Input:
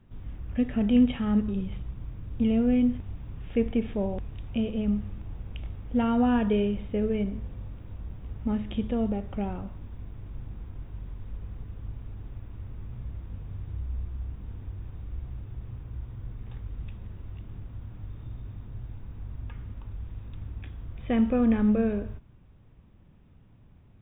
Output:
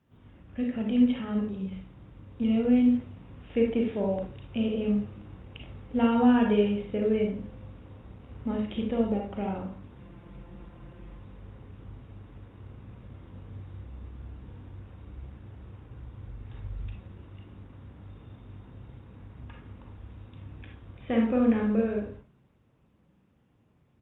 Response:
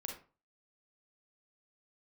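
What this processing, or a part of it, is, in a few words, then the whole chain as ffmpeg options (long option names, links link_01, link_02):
far-field microphone of a smart speaker: -filter_complex "[0:a]lowshelf=frequency=210:gain=-6,asplit=3[link_01][link_02][link_03];[link_01]afade=type=out:start_time=9.95:duration=0.02[link_04];[link_02]aecho=1:1:5.8:0.81,afade=type=in:start_time=9.95:duration=0.02,afade=type=out:start_time=11.18:duration=0.02[link_05];[link_03]afade=type=in:start_time=11.18:duration=0.02[link_06];[link_04][link_05][link_06]amix=inputs=3:normalize=0,asettb=1/sr,asplit=3[link_07][link_08][link_09];[link_07]atrim=end=15.944[link_10];[link_08]atrim=start=15.94:end=16.9,asetpts=PTS-STARTPTS,afade=type=in:duration=0.004:curve=qsin,afade=type=out:start_time=0.956:duration=0.004:curve=qsin,asubboost=boost=11.5:cutoff=110[link_11];[link_09]atrim=start=16.896[link_12];[link_10][link_11]acrossfade=duration=0.004:curve1=hsin:curve2=qsin[link_13];[link_13][link_12]acrossfade=duration=0.004:curve1=qsin:curve2=hsin[link_14];[1:a]atrim=start_sample=2205[link_15];[link_14][link_15]afir=irnorm=-1:irlink=0,highpass=91,dynaudnorm=framelen=230:gausssize=21:maxgain=4.5dB" -ar 48000 -c:a libopus -b:a 32k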